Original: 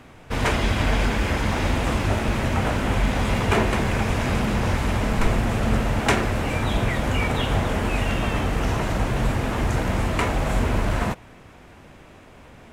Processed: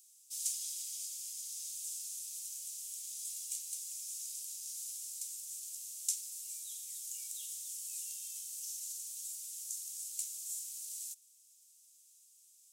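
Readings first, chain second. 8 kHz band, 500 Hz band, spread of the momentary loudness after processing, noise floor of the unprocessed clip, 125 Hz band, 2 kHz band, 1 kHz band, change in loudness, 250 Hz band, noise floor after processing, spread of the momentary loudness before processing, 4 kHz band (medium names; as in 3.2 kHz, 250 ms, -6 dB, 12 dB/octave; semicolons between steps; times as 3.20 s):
+2.0 dB, under -40 dB, 5 LU, -47 dBFS, under -40 dB, under -40 dB, under -40 dB, -16.5 dB, under -40 dB, -64 dBFS, 3 LU, -17.0 dB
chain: inverse Chebyshev high-pass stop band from 1.6 kHz, stop band 70 dB; gain riding 2 s; trim +3.5 dB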